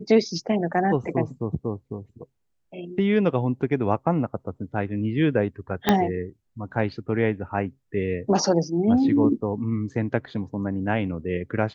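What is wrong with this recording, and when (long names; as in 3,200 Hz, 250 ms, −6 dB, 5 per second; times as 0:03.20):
0:05.89: click −4 dBFS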